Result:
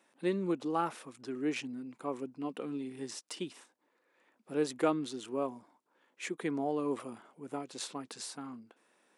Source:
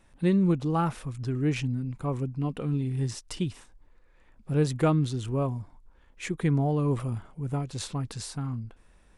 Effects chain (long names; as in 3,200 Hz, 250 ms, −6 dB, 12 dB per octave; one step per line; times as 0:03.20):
high-pass filter 260 Hz 24 dB per octave
level −3.5 dB